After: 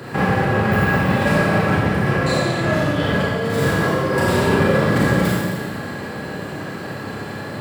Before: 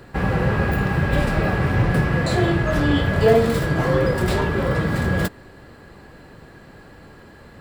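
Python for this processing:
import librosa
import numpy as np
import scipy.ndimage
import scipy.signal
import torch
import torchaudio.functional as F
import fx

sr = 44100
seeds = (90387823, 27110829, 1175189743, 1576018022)

y = scipy.signal.sosfilt(scipy.signal.butter(4, 96.0, 'highpass', fs=sr, output='sos'), x)
y = fx.over_compress(y, sr, threshold_db=-27.0, ratio=-1.0)
y = fx.rev_schroeder(y, sr, rt60_s=1.6, comb_ms=29, drr_db=-6.0)
y = y * 10.0 ** (2.5 / 20.0)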